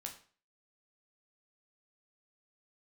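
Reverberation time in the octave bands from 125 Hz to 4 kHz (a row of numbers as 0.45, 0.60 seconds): 0.45, 0.40, 0.45, 0.40, 0.40, 0.40 seconds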